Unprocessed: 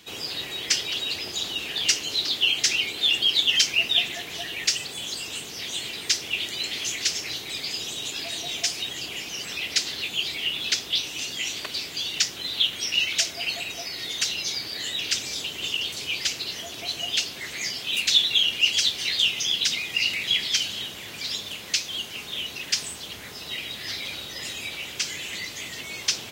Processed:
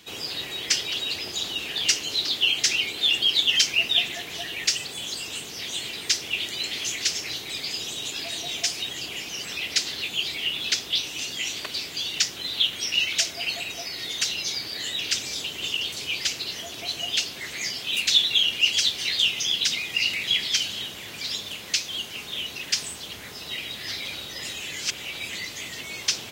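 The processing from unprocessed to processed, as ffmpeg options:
-filter_complex "[0:a]asplit=3[a][b][c];[a]atrim=end=24.602[d];[b]atrim=start=24.598:end=25.302,asetpts=PTS-STARTPTS,areverse[e];[c]atrim=start=25.298[f];[d][e]acrossfade=d=0.004:c1=hsin:c2=hsin[g];[g][f]acrossfade=d=0.004:c1=hsin:c2=hsin"

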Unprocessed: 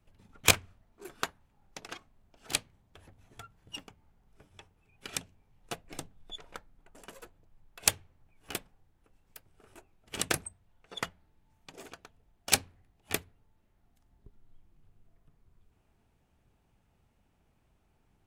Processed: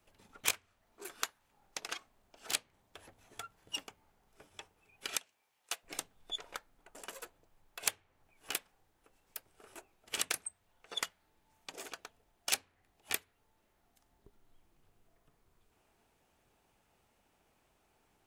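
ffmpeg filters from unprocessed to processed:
-filter_complex "[0:a]asettb=1/sr,asplit=3[a][b][c];[a]atrim=end=5.174[d];[b]atrim=start=5.17:end=5.83,asetpts=PTS-STARTPTS,afade=t=in:d=0.004:c=qsin,afade=t=out:st=0.656:d=0.004:c=qsin,highpass=f=1.5k:p=1[e];[c]atrim=start=5.826[f];[d][e]acrossfade=d=0.004:c1=hsin:c2=qsin[g];[g][f]acrossfade=d=0.004:c1=qsin:c2=hsin,bass=f=250:g=-13,treble=f=4k:g=3,acrossover=split=1100|3200[h][i][j];[h]acompressor=threshold=-52dB:ratio=4[k];[i]acompressor=threshold=-42dB:ratio=4[l];[j]acompressor=threshold=-38dB:ratio=4[m];[k][l][m]amix=inputs=3:normalize=0,volume=3.5dB"

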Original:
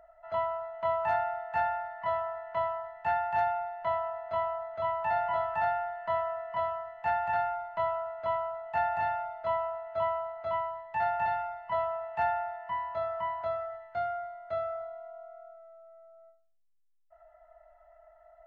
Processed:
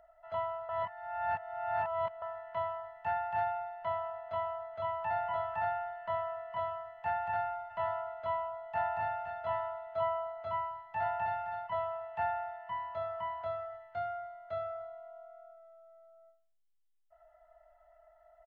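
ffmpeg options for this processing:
-filter_complex "[0:a]asplit=3[a][b][c];[a]afade=t=out:st=7.69:d=0.02[d];[b]aecho=1:1:517:0.335,afade=t=in:st=7.69:d=0.02,afade=t=out:st=11.66:d=0.02[e];[c]afade=t=in:st=11.66:d=0.02[f];[d][e][f]amix=inputs=3:normalize=0,asplit=3[g][h][i];[g]atrim=end=0.692[j];[h]atrim=start=0.688:end=2.222,asetpts=PTS-STARTPTS,areverse[k];[i]atrim=start=2.218[l];[j][k]acrossfade=d=0.004:c1=hsin:c2=hsin[m];[m][l]acrossfade=d=0.004:c1=hsin:c2=hsin,acrossover=split=2600[n][o];[o]acompressor=threshold=-57dB:ratio=4:attack=1:release=60[p];[n][p]amix=inputs=2:normalize=0,equalizer=f=100:t=o:w=0.33:g=6,equalizer=f=315:t=o:w=0.33:g=-4,equalizer=f=3.15k:t=o:w=0.33:g=6,volume=-4.5dB"

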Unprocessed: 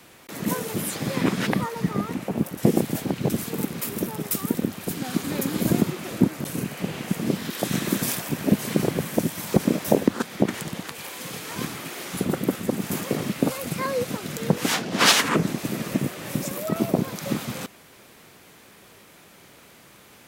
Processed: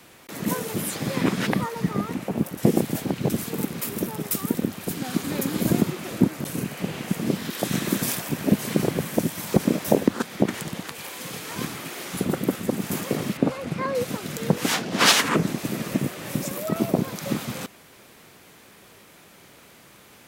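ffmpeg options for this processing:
-filter_complex "[0:a]asettb=1/sr,asplit=3[a][b][c];[a]atrim=end=13.374[d];[b]atrim=start=13.37:end=13.95,asetpts=PTS-STARTPTS,afade=t=in:d=0.004:c=qsin,afade=t=out:st=0.576:d=0.004:c=qsin,aemphasis=mode=reproduction:type=75fm[e];[c]atrim=start=13.946[f];[d][e]acrossfade=d=0.004:c1=hsin:c2=qsin[g];[g][f]acrossfade=d=0.004:c1=qsin:c2=hsin"

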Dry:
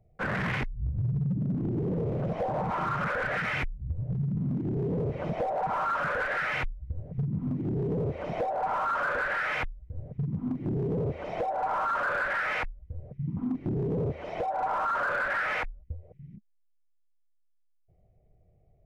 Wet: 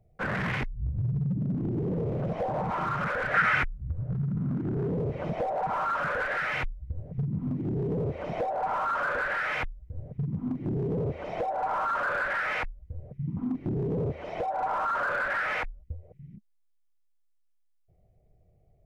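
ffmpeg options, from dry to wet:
-filter_complex "[0:a]asettb=1/sr,asplit=3[a][b][c];[a]atrim=end=3.344[d];[b]atrim=start=3.34:end=4.91,asetpts=PTS-STARTPTS,afade=t=in:d=0.004:c=qsin,afade=t=out:st=1.566:d=0.004:c=qsin,equalizer=f=1.4k:t=o:w=0.79:g=11.5[e];[c]atrim=start=4.906[f];[d][e]acrossfade=d=0.004:c1=hsin:c2=qsin[g];[g][f]acrossfade=d=0.004:c1=qsin:c2=hsin"

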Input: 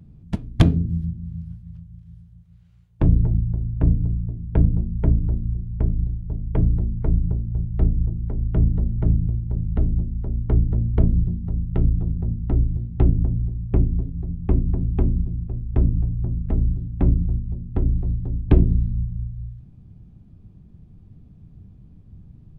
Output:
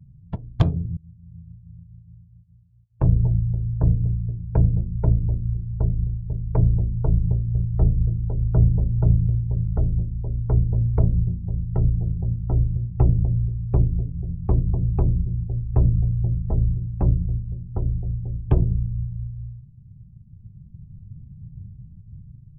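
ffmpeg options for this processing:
-filter_complex "[0:a]asplit=2[a][b];[a]atrim=end=0.97,asetpts=PTS-STARTPTS,afade=t=out:st=0.966:d=0.004:c=hsin:silence=0.0668344[c];[b]atrim=start=0.97,asetpts=PTS-STARTPTS,afade=t=in:d=0.81:silence=0.0668344[d];[c][d]concat=n=2:v=0:a=1,afftdn=nr=25:nf=-42,equalizer=f=125:t=o:w=1:g=8,equalizer=f=250:t=o:w=1:g=-8,equalizer=f=500:t=o:w=1:g=5,equalizer=f=1k:t=o:w=1:g=7,equalizer=f=2k:t=o:w=1:g=-4,dynaudnorm=f=620:g=5:m=9dB,volume=-4.5dB"

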